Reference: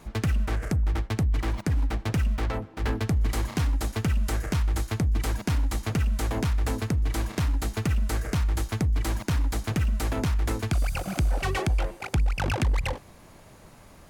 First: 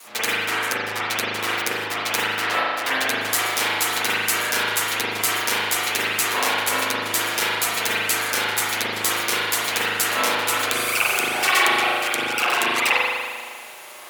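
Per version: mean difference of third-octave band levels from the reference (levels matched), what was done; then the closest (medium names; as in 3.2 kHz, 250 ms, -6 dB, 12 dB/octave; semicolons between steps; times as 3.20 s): 11.0 dB: comb filter that takes the minimum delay 8.3 ms; high-pass 410 Hz 12 dB/octave; tilt EQ +4 dB/octave; spring tank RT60 1.7 s, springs 38 ms, chirp 55 ms, DRR -9 dB; trim +4.5 dB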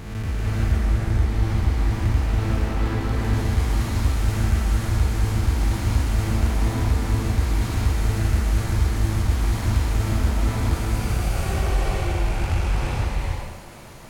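6.5 dB: spectral blur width 334 ms; peak limiter -23.5 dBFS, peak gain reduction 5.5 dB; on a send: thinning echo 882 ms, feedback 81%, level -19 dB; on the sum: gated-style reverb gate 490 ms rising, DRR -4 dB; trim +3.5 dB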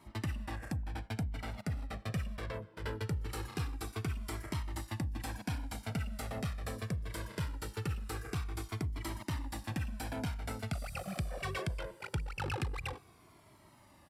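2.0 dB: high-pass 97 Hz 12 dB/octave; band-stop 6.5 kHz, Q 6.5; resampled via 32 kHz; Shepard-style flanger falling 0.22 Hz; trim -4.5 dB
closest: third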